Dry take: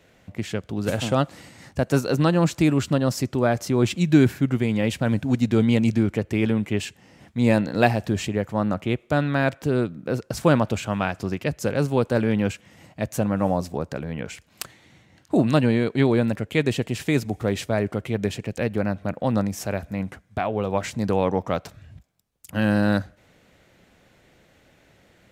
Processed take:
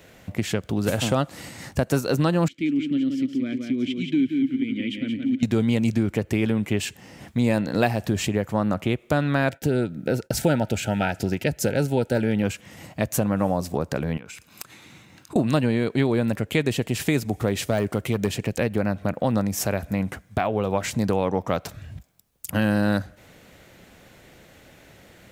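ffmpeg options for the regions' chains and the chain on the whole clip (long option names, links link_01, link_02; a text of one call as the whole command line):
ffmpeg -i in.wav -filter_complex "[0:a]asettb=1/sr,asplit=3[link_01][link_02][link_03];[link_01]atrim=end=2.484[link_04];[link_02]atrim=start=2.48:end=5.43,asetpts=PTS-STARTPTS,afade=type=in:duration=0.004:curve=qsin,afade=type=out:start_time=2.946:duration=0.004:curve=qsin,asplit=3[link_05][link_06][link_07];[link_05]bandpass=frequency=270:width_type=q:width=8,volume=0dB[link_08];[link_06]bandpass=frequency=2290:width_type=q:width=8,volume=-6dB[link_09];[link_07]bandpass=frequency=3010:width_type=q:width=8,volume=-9dB[link_10];[link_08][link_09][link_10]amix=inputs=3:normalize=0,equalizer=frequency=3100:width=5:gain=4.5,aecho=1:1:175|350|525|700:0.501|0.14|0.0393|0.011,atrim=end_sample=130095[link_11];[link_03]atrim=start=5.426[link_12];[link_04][link_11]acrossfade=duration=0.004:curve1=hsin:curve2=qsin[link_13];[link_13][link_12]acrossfade=duration=0.004:curve1=qsin:curve2=hsin,asettb=1/sr,asplit=3[link_14][link_15][link_16];[link_14]atrim=end=9.504[link_17];[link_15]atrim=start=9.5:end=12.43,asetpts=PTS-STARTPTS,afade=type=in:duration=0.004:curve=qsin,afade=type=out:start_time=2.926:duration=0.004:curve=qsin,agate=range=-33dB:threshold=-44dB:ratio=3:release=100:detection=peak,asuperstop=centerf=1100:order=20:qfactor=3.4[link_18];[link_16]atrim=start=12.426[link_19];[link_17][link_18]acrossfade=duration=0.004:curve1=hsin:curve2=qsin[link_20];[link_20][link_19]acrossfade=duration=0.004:curve1=qsin:curve2=hsin,asettb=1/sr,asplit=3[link_21][link_22][link_23];[link_21]atrim=end=14.174[link_24];[link_22]atrim=start=14.17:end=15.36,asetpts=PTS-STARTPTS,afade=type=in:duration=0.004:curve=qsin,afade=type=out:start_time=1.186:duration=0.004:curve=qsin,highpass=frequency=190:poles=1,aecho=1:1:0.8:0.37,atrim=end_sample=52479,acompressor=threshold=-43dB:ratio=10:attack=3.2:release=140:knee=1:detection=peak[link_25];[link_23]atrim=start=15.356[link_26];[link_24][link_25]acrossfade=duration=0.004:curve1=hsin:curve2=qsin[link_27];[link_27][link_26]acrossfade=duration=0.004:curve1=qsin:curve2=hsin,asettb=1/sr,asplit=3[link_28][link_29][link_30];[link_28]atrim=end=17.664[link_31];[link_29]atrim=start=17.66:end=18.31,asetpts=PTS-STARTPTS,afade=type=in:duration=0.004:curve=qsin,afade=type=out:start_time=0.646:duration=0.004:curve=qsin,deesser=0.8,bass=frequency=250:gain=0,treble=frequency=4000:gain=4,asoftclip=type=hard:threshold=-14.5dB[link_32];[link_30]atrim=start=18.306[link_33];[link_31][link_32]acrossfade=duration=0.004:curve1=hsin:curve2=qsin[link_34];[link_34][link_33]acrossfade=duration=0.004:curve1=qsin:curve2=hsin,highshelf=frequency=11000:gain=10,acompressor=threshold=-28dB:ratio=2.5,volume=6.5dB" out.wav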